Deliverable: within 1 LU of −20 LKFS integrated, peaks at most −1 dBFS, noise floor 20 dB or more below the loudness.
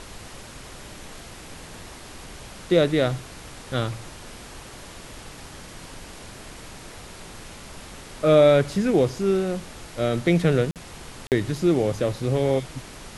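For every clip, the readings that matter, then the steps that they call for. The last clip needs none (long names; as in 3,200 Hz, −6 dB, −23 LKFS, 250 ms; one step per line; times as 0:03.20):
number of dropouts 2; longest dropout 48 ms; background noise floor −42 dBFS; target noise floor −43 dBFS; integrated loudness −22.5 LKFS; sample peak −6.0 dBFS; target loudness −20.0 LKFS
→ repair the gap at 0:10.71/0:11.27, 48 ms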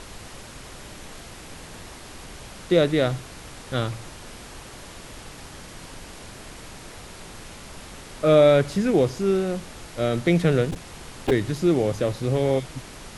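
number of dropouts 0; background noise floor −42 dBFS; target noise floor −43 dBFS
→ noise reduction from a noise print 6 dB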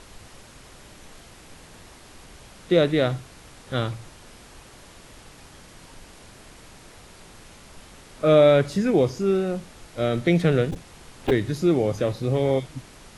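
background noise floor −48 dBFS; integrated loudness −22.5 LKFS; sample peak −6.5 dBFS; target loudness −20.0 LKFS
→ level +2.5 dB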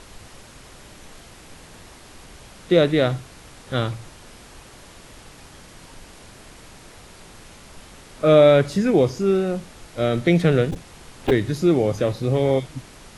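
integrated loudness −20.0 LKFS; sample peak −4.0 dBFS; background noise floor −46 dBFS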